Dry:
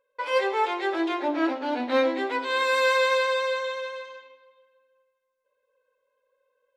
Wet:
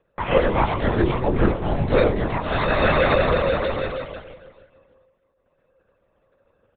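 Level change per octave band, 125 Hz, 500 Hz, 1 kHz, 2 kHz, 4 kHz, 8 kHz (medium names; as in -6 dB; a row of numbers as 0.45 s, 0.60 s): no reading, +4.5 dB, +2.5 dB, +0.5 dB, -1.0 dB, under -35 dB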